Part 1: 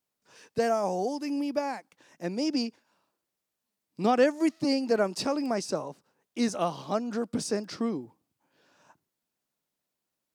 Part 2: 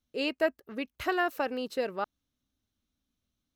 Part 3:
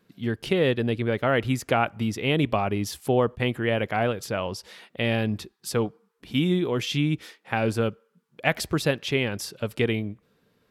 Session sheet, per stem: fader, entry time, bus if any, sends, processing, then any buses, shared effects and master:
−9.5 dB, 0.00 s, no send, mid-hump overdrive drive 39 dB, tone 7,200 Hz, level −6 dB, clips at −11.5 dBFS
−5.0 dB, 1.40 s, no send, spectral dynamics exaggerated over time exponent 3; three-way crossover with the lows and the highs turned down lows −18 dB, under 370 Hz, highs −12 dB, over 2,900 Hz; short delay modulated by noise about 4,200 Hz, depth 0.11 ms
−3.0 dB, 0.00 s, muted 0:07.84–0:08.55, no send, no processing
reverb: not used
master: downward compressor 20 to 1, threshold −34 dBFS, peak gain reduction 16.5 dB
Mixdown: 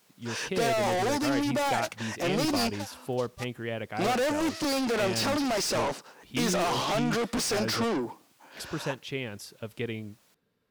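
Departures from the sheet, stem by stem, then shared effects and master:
stem 3 −3.0 dB → −9.5 dB
master: missing downward compressor 20 to 1, threshold −34 dBFS, peak gain reduction 16.5 dB

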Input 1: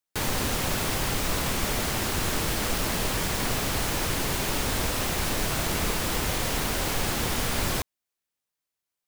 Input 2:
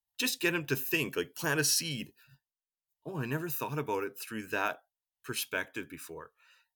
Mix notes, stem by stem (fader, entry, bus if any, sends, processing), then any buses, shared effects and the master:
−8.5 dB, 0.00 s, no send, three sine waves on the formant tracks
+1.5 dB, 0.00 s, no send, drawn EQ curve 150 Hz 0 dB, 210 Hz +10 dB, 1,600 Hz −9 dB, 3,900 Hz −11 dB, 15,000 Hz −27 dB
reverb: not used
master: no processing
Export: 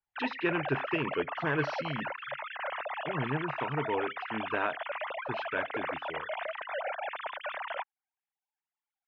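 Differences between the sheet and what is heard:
stem 2: missing drawn EQ curve 150 Hz 0 dB, 210 Hz +10 dB, 1,600 Hz −9 dB, 3,900 Hz −11 dB, 15,000 Hz −27 dB
master: extra Gaussian smoothing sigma 3.2 samples

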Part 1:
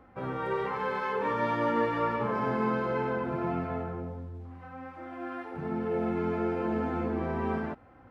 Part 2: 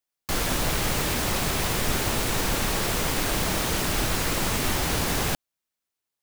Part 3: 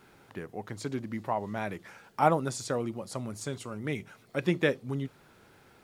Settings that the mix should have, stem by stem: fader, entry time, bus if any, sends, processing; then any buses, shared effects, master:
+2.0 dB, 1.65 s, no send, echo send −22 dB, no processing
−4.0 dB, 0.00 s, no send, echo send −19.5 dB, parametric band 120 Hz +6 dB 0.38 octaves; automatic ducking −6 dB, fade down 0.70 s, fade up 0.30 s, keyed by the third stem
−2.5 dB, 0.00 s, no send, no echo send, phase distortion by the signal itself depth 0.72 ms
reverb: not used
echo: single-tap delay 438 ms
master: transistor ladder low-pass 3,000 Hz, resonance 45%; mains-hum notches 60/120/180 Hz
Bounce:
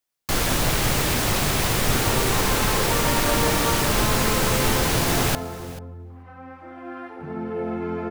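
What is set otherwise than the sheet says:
stem 2 −4.0 dB → +3.5 dB
stem 3: muted
master: missing transistor ladder low-pass 3,000 Hz, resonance 45%

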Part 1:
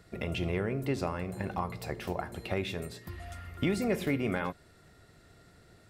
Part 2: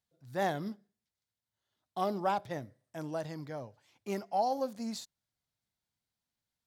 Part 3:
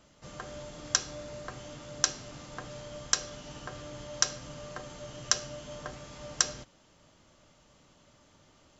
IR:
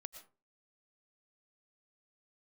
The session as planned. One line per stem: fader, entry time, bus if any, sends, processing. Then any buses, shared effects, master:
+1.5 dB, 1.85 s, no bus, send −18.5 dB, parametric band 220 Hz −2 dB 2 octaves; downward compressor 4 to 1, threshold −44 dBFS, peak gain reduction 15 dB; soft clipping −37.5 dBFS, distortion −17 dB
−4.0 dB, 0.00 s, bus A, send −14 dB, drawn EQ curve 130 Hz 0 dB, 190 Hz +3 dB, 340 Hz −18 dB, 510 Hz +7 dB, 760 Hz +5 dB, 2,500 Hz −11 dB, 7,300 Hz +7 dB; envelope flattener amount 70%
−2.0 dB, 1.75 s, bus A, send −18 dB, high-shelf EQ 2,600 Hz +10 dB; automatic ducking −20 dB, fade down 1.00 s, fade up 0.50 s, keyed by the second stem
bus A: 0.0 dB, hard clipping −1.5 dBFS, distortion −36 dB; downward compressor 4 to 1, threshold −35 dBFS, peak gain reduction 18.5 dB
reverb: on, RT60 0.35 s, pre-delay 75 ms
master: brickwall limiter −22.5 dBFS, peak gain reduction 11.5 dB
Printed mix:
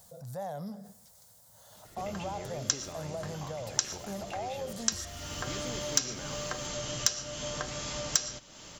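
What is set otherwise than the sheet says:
stem 2 −4.0 dB → −12.5 dB
stem 3 −2.0 dB → +10.0 dB
master: missing brickwall limiter −22.5 dBFS, peak gain reduction 11.5 dB

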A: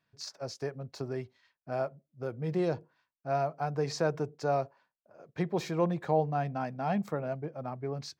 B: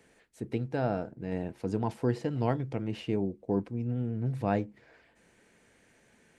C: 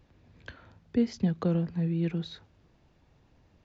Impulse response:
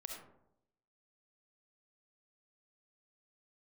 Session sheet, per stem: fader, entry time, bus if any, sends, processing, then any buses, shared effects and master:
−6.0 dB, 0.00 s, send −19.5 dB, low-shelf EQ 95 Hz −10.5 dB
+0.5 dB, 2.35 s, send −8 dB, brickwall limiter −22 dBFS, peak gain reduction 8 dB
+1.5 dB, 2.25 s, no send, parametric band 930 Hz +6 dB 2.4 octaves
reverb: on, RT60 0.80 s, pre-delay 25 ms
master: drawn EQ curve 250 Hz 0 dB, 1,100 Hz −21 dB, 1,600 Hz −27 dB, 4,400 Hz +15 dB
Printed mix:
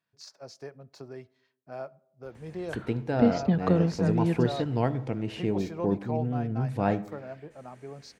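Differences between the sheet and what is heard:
stem B: missing brickwall limiter −22 dBFS, peak gain reduction 8 dB
master: missing drawn EQ curve 250 Hz 0 dB, 1,100 Hz −21 dB, 1,600 Hz −27 dB, 4,400 Hz +15 dB

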